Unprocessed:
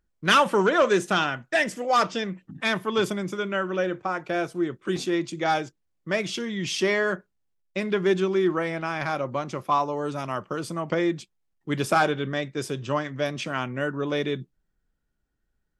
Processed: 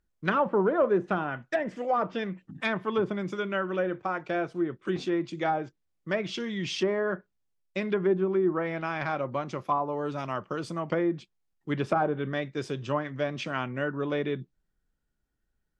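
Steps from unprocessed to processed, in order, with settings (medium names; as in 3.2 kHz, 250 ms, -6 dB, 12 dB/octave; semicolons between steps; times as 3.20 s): low-pass that closes with the level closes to 950 Hz, closed at -18.5 dBFS; trim -2.5 dB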